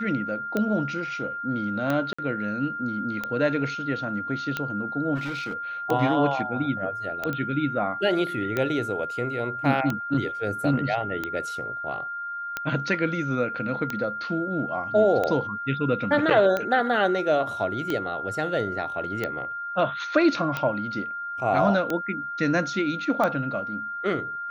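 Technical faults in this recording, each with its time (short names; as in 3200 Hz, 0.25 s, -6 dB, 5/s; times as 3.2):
tick 45 rpm -13 dBFS
tone 1400 Hz -30 dBFS
2.13–2.19 gap 55 ms
5.15–5.56 clipped -26.5 dBFS
7.33 pop -17 dBFS
16.3–16.31 gap 6.2 ms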